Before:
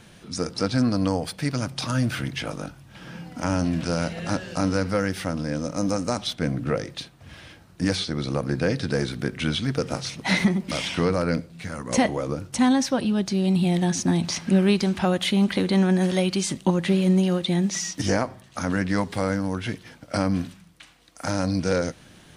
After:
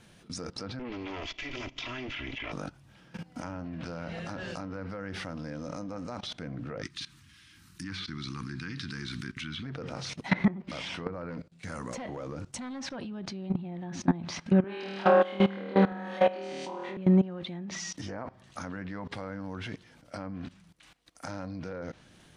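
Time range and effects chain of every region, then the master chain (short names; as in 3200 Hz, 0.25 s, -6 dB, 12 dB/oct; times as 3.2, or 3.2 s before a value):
0.79–2.52 minimum comb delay 3 ms + band shelf 2600 Hz +13.5 dB 1 oct + careless resampling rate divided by 3×, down none, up filtered
6.82–9.63 Chebyshev band-stop 290–1200 Hz + high shelf 2800 Hz +11.5 dB
11.3–12.96 bell 7500 Hz +4 dB 0.5 oct + hard clip -19.5 dBFS + expander -39 dBFS
14.64–16.97 HPF 400 Hz + flutter echo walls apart 4.4 m, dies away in 1.4 s
whole clip: treble ducked by the level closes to 1600 Hz, closed at -17 dBFS; dynamic EQ 1100 Hz, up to +3 dB, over -40 dBFS, Q 0.83; level quantiser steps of 19 dB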